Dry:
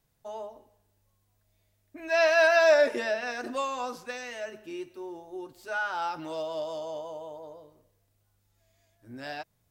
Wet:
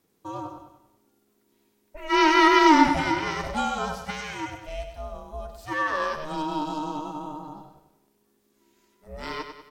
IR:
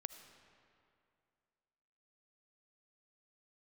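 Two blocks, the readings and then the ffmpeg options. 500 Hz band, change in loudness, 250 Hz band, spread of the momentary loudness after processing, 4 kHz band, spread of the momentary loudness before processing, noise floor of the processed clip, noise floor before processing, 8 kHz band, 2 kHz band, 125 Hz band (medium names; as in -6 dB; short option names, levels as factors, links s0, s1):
-4.0 dB, +4.0 dB, +16.0 dB, 22 LU, +7.5 dB, 22 LU, -69 dBFS, -73 dBFS, no reading, +2.0 dB, +16.0 dB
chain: -af "aecho=1:1:97|194|291|388|485|582:0.376|0.184|0.0902|0.0442|0.0217|0.0106,aeval=exprs='val(0)*sin(2*PI*310*n/s)':c=same,volume=2.11"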